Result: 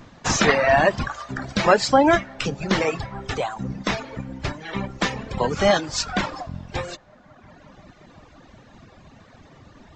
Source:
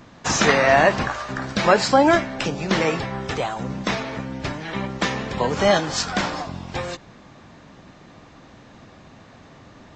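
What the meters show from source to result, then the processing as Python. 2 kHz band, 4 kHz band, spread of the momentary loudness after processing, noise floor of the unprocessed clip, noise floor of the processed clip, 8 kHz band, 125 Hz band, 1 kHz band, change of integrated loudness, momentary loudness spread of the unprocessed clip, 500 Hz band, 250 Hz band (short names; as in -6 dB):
-1.5 dB, -1.5 dB, 15 LU, -47 dBFS, -51 dBFS, -1.0 dB, -1.0 dB, -1.0 dB, -1.0 dB, 14 LU, -1.0 dB, -1.0 dB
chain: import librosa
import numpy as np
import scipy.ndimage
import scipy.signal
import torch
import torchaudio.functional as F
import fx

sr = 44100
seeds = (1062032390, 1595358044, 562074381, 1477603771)

y = fx.echo_wet_bandpass(x, sr, ms=178, feedback_pct=84, hz=1000.0, wet_db=-21)
y = fx.dereverb_blind(y, sr, rt60_s=1.5)
y = fx.low_shelf(y, sr, hz=71.0, db=9.0)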